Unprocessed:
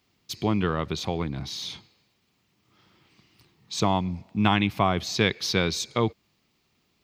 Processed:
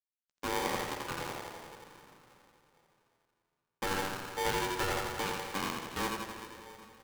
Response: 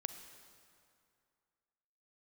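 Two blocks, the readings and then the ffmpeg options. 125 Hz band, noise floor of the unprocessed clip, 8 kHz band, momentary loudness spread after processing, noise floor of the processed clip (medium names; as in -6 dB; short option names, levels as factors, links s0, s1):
-17.0 dB, -71 dBFS, -5.5 dB, 16 LU, under -85 dBFS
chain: -filter_complex "[0:a]lowshelf=f=65:g=-7.5,acrossover=split=240|2300[s0][s1][s2];[s2]acompressor=threshold=0.00708:ratio=16[s3];[s0][s1][s3]amix=inputs=3:normalize=0,flanger=delay=1.1:depth=5.1:regen=-56:speed=0.39:shape=sinusoidal,aresample=16000,acrusher=bits=4:mix=0:aa=0.5,aresample=44100,volume=11.2,asoftclip=hard,volume=0.0891,aecho=1:1:85|170|255|340|425|510|595|680:0.631|0.36|0.205|0.117|0.0666|0.038|0.0216|0.0123[s4];[1:a]atrim=start_sample=2205,asetrate=29988,aresample=44100[s5];[s4][s5]afir=irnorm=-1:irlink=0,aeval=exprs='val(0)*sgn(sin(2*PI*670*n/s))':c=same,volume=0.473"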